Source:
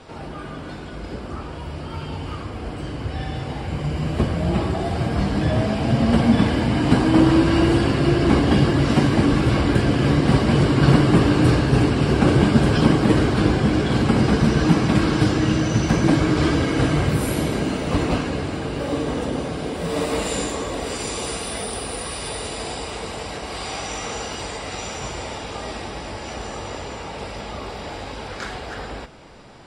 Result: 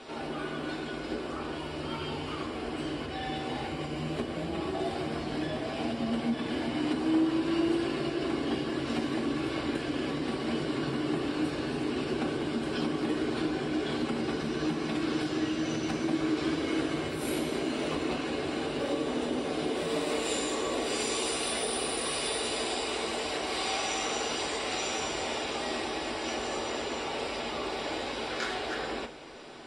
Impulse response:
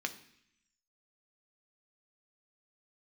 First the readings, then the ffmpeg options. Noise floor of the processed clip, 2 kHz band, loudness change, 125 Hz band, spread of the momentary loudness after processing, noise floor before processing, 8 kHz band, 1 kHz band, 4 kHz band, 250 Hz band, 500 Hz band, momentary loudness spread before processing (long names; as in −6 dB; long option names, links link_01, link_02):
−37 dBFS, −7.5 dB, −11.5 dB, −21.0 dB, 6 LU, −34 dBFS, −4.5 dB, −8.5 dB, −4.5 dB, −11.0 dB, −8.0 dB, 16 LU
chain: -filter_complex "[0:a]acompressor=threshold=-26dB:ratio=6[link_01];[1:a]atrim=start_sample=2205,asetrate=70560,aresample=44100[link_02];[link_01][link_02]afir=irnorm=-1:irlink=0,volume=2dB"